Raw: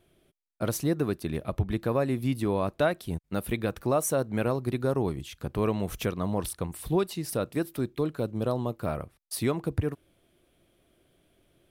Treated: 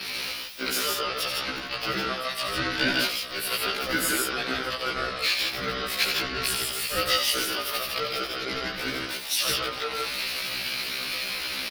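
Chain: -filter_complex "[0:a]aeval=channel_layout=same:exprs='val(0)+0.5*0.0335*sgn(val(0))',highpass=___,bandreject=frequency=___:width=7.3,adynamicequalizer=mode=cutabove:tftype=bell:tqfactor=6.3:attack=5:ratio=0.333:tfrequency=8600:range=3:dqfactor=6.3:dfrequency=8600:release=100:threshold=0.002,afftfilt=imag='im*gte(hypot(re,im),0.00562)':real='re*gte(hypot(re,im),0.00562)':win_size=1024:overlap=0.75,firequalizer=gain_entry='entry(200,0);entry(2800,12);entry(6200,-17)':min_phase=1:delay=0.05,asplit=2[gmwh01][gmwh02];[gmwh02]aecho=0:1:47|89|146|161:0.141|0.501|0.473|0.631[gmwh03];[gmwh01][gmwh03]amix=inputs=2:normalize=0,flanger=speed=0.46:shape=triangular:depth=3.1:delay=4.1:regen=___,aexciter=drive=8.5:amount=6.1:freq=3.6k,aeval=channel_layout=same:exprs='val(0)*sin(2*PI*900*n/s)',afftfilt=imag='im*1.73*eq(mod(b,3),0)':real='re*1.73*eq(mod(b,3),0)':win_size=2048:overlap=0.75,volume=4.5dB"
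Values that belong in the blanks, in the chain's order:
400, 7k, 88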